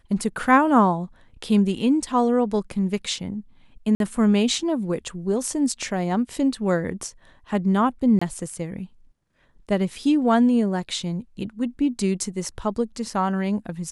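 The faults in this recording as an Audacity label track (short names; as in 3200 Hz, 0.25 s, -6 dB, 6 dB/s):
3.950000	4.000000	gap 52 ms
8.190000	8.210000	gap 25 ms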